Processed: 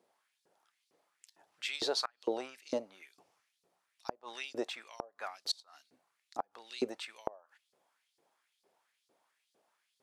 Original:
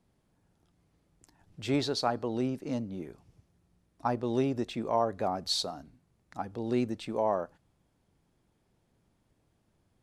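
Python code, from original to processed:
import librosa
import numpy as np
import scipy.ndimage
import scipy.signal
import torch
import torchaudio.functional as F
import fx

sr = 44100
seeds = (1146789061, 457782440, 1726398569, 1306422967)

y = fx.filter_lfo_highpass(x, sr, shape='saw_up', hz=2.2, low_hz=380.0, high_hz=4900.0, q=2.4)
y = fx.gate_flip(y, sr, shuts_db=-20.0, range_db=-30)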